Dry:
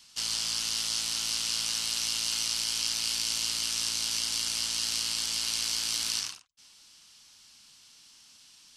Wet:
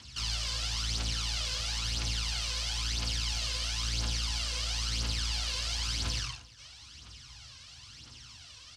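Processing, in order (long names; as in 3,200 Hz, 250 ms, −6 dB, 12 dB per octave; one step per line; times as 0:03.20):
high-shelf EQ 9,600 Hz −9.5 dB
notch filter 890 Hz, Q 24
in parallel at +1.5 dB: downward compressor, threshold −48 dBFS, peak gain reduction 19.5 dB
on the sum: soft clipping −29 dBFS, distortion −9 dB
phase shifter 0.99 Hz, delay 2 ms, feedback 63%
high-frequency loss of the air 65 metres
single-tap delay 348 ms −21 dB
on a send at −9 dB: convolution reverb RT60 0.35 s, pre-delay 3 ms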